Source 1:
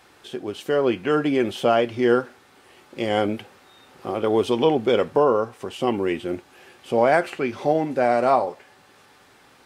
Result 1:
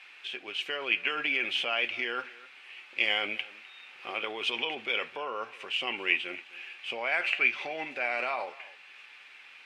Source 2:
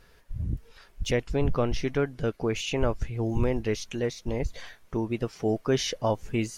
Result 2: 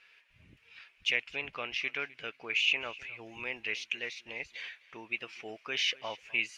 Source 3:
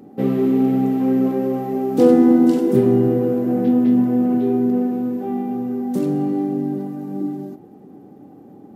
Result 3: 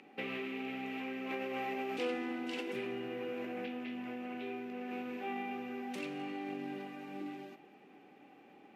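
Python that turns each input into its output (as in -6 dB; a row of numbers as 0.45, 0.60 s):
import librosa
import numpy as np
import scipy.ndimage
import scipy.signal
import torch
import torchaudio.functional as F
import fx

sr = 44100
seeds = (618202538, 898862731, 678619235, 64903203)

p1 = fx.over_compress(x, sr, threshold_db=-22.0, ratio=-0.5)
p2 = x + F.gain(torch.from_numpy(p1), 1.0).numpy()
p3 = fx.bandpass_q(p2, sr, hz=2500.0, q=4.8)
p4 = p3 + 10.0 ** (-20.5 / 20.0) * np.pad(p3, (int(256 * sr / 1000.0), 0))[:len(p3)]
y = F.gain(torch.from_numpy(p4), 4.5).numpy()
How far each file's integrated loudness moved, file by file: -8.0, -4.5, -22.0 LU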